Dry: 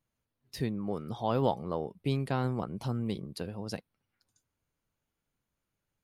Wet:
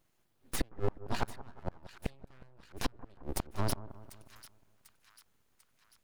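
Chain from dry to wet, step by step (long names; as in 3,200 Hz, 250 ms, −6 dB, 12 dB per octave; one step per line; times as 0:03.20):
full-wave rectification
gate with flip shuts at −27 dBFS, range −38 dB
echo with a time of its own for lows and highs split 1,300 Hz, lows 180 ms, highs 744 ms, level −15 dB
level +10.5 dB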